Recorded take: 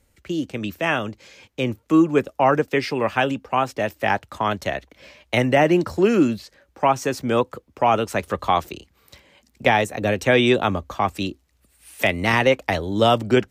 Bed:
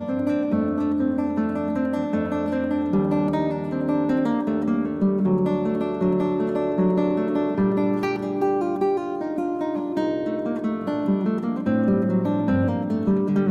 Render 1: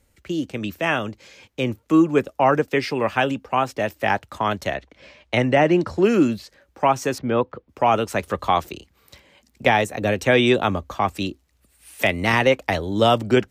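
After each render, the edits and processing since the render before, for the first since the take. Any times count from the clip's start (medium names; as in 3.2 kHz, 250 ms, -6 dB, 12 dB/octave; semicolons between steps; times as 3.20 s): 4.74–6.03 s: distance through air 60 m; 7.18–7.69 s: distance through air 280 m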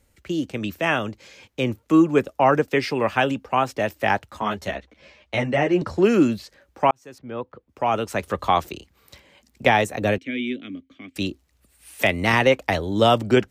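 4.31–5.82 s: three-phase chorus; 6.91–8.47 s: fade in; 10.18–11.16 s: vowel filter i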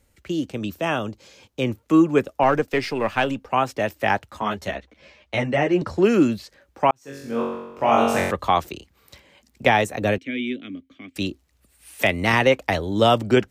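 0.53–1.62 s: peaking EQ 2 kHz -7.5 dB 0.85 oct; 2.43–3.46 s: partial rectifier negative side -3 dB; 6.99–8.31 s: flutter echo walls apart 3.7 m, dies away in 1 s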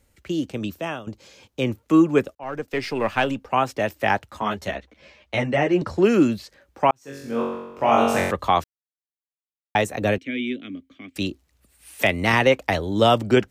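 0.65–1.07 s: fade out, to -15.5 dB; 2.35–2.97 s: fade in; 8.64–9.75 s: mute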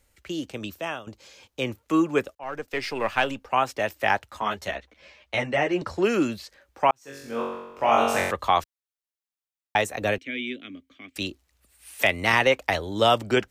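peaking EQ 170 Hz -8.5 dB 2.8 oct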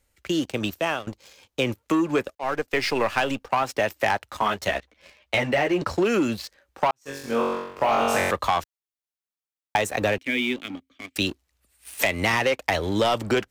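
waveshaping leveller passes 2; compression, threshold -19 dBFS, peak gain reduction 8 dB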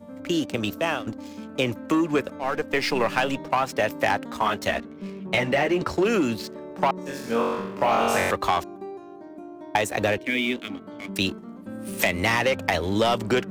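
add bed -15 dB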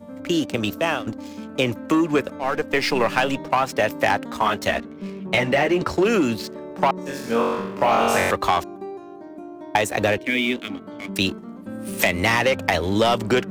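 trim +3 dB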